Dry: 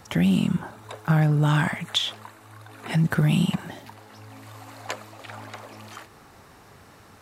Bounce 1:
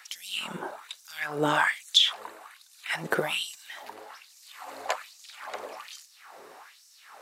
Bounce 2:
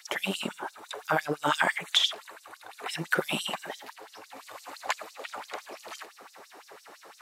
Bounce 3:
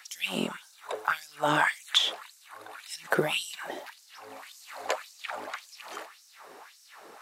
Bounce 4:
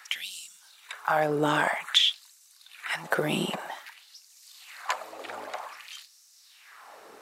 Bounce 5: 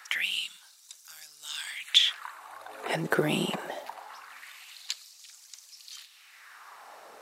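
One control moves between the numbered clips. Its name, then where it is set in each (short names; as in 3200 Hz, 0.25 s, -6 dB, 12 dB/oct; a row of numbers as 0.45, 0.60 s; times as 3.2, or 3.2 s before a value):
LFO high-pass, rate: 1.2, 5.9, 1.8, 0.52, 0.23 Hz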